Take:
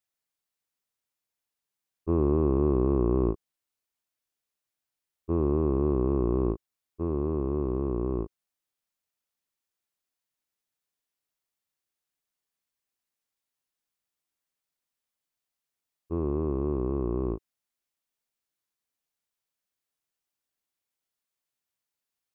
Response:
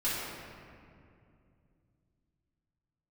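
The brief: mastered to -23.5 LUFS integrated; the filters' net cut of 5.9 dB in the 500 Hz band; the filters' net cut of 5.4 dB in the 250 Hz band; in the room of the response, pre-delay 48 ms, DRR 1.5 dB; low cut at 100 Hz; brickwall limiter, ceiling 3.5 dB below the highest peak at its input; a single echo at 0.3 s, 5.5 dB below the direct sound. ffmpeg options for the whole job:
-filter_complex "[0:a]highpass=100,equalizer=f=250:t=o:g=-5,equalizer=f=500:t=o:g=-6,alimiter=limit=-21.5dB:level=0:latency=1,aecho=1:1:300:0.531,asplit=2[a][b];[1:a]atrim=start_sample=2205,adelay=48[c];[b][c]afir=irnorm=-1:irlink=0,volume=-10dB[d];[a][d]amix=inputs=2:normalize=0,volume=9dB"

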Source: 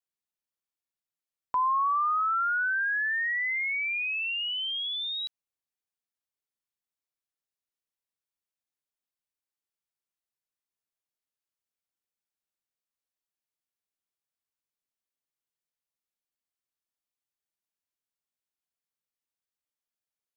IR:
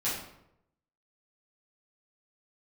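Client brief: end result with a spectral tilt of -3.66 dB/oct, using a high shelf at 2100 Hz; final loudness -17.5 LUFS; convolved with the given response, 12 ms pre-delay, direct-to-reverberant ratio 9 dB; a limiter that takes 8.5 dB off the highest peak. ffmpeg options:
-filter_complex "[0:a]highshelf=f=2.1k:g=-6,alimiter=level_in=7dB:limit=-24dB:level=0:latency=1,volume=-7dB,asplit=2[a][b];[1:a]atrim=start_sample=2205,adelay=12[c];[b][c]afir=irnorm=-1:irlink=0,volume=-16.5dB[d];[a][d]amix=inputs=2:normalize=0,volume=15dB"

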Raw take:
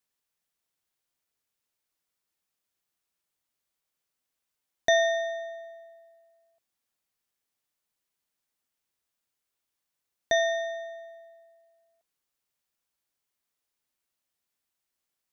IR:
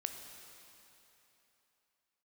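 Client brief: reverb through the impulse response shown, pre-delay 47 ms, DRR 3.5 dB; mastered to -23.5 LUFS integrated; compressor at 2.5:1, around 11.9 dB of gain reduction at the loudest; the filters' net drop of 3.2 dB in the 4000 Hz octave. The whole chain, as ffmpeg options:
-filter_complex "[0:a]equalizer=f=4k:t=o:g=-3.5,acompressor=threshold=-37dB:ratio=2.5,asplit=2[a][b];[1:a]atrim=start_sample=2205,adelay=47[c];[b][c]afir=irnorm=-1:irlink=0,volume=-3dB[d];[a][d]amix=inputs=2:normalize=0,volume=15dB"

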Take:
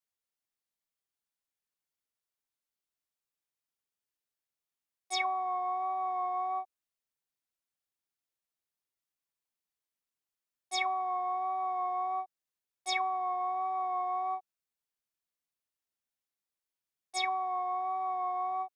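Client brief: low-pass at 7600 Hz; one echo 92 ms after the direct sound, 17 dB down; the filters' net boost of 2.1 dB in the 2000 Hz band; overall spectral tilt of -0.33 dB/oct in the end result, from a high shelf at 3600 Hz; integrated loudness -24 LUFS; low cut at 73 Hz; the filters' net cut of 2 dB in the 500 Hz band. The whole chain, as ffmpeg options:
-af "highpass=73,lowpass=7.6k,equalizer=f=500:t=o:g=-4.5,equalizer=f=2k:t=o:g=5,highshelf=f=3.6k:g=-8.5,aecho=1:1:92:0.141,volume=10.5dB"

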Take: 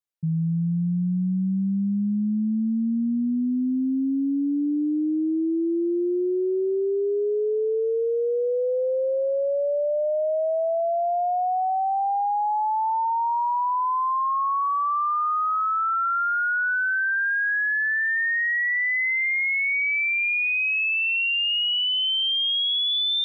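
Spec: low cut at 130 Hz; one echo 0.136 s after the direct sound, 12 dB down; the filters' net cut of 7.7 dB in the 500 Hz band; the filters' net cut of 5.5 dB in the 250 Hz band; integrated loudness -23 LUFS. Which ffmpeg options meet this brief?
-af "highpass=130,equalizer=f=250:t=o:g=-4,equalizer=f=500:t=o:g=-9,aecho=1:1:136:0.251,volume=1.5dB"

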